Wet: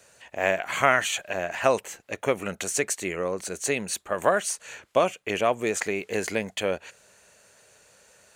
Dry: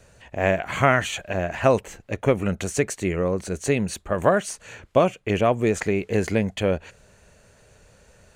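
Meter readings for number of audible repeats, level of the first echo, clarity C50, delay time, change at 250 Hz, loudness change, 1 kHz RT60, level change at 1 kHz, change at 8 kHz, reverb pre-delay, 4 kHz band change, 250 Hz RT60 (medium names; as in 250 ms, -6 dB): no echo, no echo, no reverb, no echo, -8.5 dB, -3.0 dB, no reverb, -1.5 dB, +4.0 dB, no reverb, +1.5 dB, no reverb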